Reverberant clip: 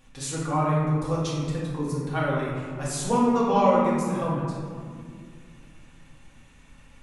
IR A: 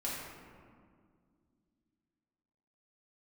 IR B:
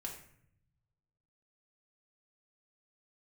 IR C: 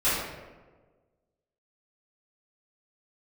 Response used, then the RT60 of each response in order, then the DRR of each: A; 2.1 s, 0.65 s, 1.4 s; -7.0 dB, -1.0 dB, -14.5 dB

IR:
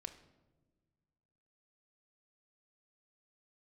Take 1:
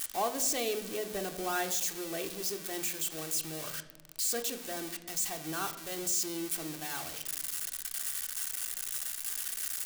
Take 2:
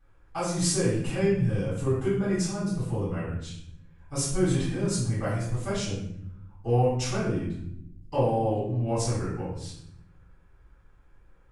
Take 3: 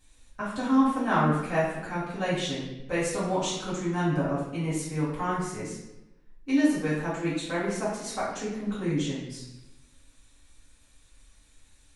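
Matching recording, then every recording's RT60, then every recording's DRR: 1; no single decay rate, 0.70 s, 0.95 s; 5.0 dB, -12.0 dB, -11.0 dB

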